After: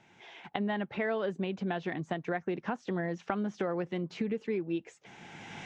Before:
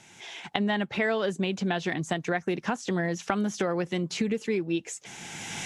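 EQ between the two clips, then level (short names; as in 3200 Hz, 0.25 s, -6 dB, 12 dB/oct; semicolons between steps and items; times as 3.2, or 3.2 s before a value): tape spacing loss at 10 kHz 29 dB; low shelf 230 Hz -5 dB; -2.0 dB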